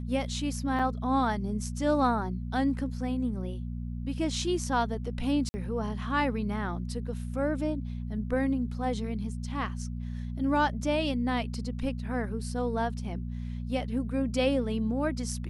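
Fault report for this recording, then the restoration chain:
hum 60 Hz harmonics 4 -35 dBFS
0.79 s: dropout 4.3 ms
5.49–5.54 s: dropout 50 ms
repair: de-hum 60 Hz, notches 4; interpolate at 0.79 s, 4.3 ms; interpolate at 5.49 s, 50 ms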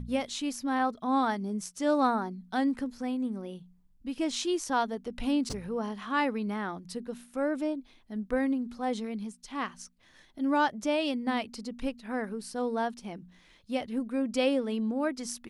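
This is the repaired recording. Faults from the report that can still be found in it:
nothing left

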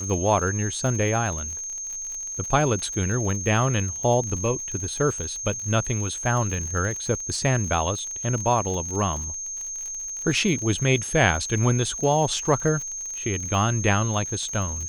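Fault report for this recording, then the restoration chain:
crackle 48 per s -31 dBFS
whine 6.4 kHz -30 dBFS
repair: de-click; band-stop 6.4 kHz, Q 30

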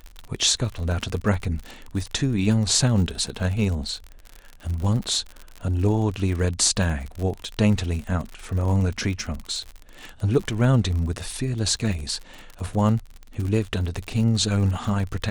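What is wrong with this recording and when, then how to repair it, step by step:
crackle 51 per s -29 dBFS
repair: de-click

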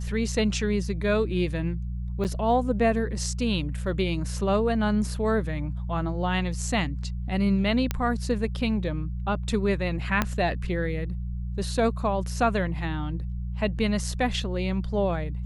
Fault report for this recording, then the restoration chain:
hum 60 Hz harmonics 3 -31 dBFS
2.24–2.25 s: dropout 8.7 ms
7.91 s: pop -11 dBFS
10.22 s: pop -8 dBFS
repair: de-click; de-hum 60 Hz, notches 3; interpolate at 2.24 s, 8.7 ms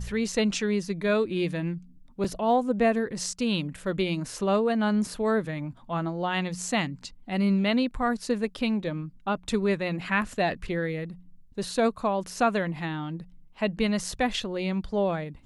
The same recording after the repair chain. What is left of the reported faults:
10.22 s: pop

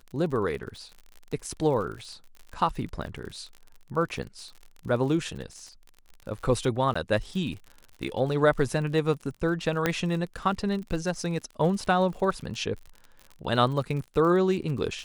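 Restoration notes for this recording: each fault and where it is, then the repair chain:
crackle 54 per s -36 dBFS
6.94–6.96 s: dropout 15 ms
9.86 s: pop -9 dBFS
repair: de-click; interpolate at 6.94 s, 15 ms

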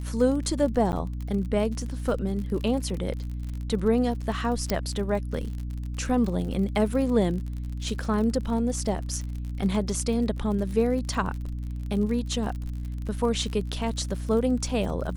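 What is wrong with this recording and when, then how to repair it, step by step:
crackle 50 per s -33 dBFS
hum 60 Hz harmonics 5 -32 dBFS
0.92–0.93 s: dropout 9.2 ms
4.70 s: pop -10 dBFS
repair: de-click; de-hum 60 Hz, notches 5; interpolate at 0.92 s, 9.2 ms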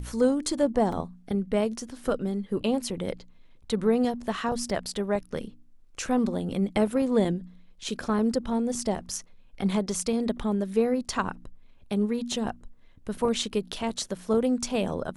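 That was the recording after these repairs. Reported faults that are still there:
4.70 s: pop

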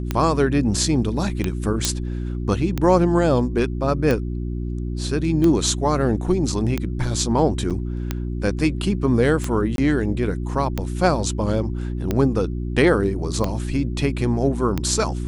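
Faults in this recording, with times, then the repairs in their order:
hum 60 Hz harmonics 6 -26 dBFS
tick 45 rpm -9 dBFS
1.85 s: pop -3 dBFS
7.70–7.71 s: dropout 6.9 ms
9.76–9.78 s: dropout 22 ms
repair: de-click; de-hum 60 Hz, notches 6; interpolate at 7.70 s, 6.9 ms; interpolate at 9.76 s, 22 ms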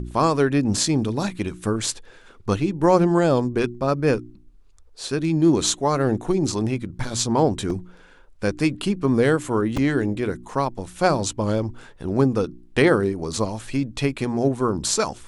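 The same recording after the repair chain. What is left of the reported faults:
nothing left

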